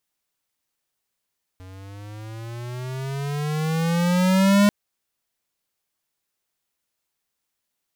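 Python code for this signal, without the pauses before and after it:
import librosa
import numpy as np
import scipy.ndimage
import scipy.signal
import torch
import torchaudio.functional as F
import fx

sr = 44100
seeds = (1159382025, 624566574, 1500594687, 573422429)

y = fx.riser_tone(sr, length_s=3.09, level_db=-14.5, wave='square', hz=91.9, rise_st=14.0, swell_db=27.0)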